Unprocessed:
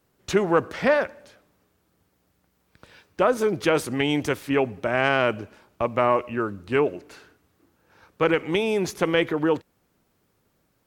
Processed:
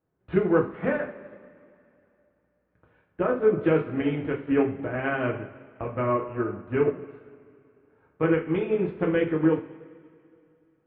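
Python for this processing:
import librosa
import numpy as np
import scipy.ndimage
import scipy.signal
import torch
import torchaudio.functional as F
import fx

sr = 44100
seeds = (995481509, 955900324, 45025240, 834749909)

y = fx.dynamic_eq(x, sr, hz=790.0, q=0.86, threshold_db=-34.0, ratio=4.0, max_db=-8)
y = scipy.ndimage.gaussian_filter1d(y, 4.5, mode='constant')
y = fx.rev_double_slope(y, sr, seeds[0], early_s=0.39, late_s=2.9, knee_db=-15, drr_db=-2.0)
y = fx.upward_expand(y, sr, threshold_db=-39.0, expansion=1.5)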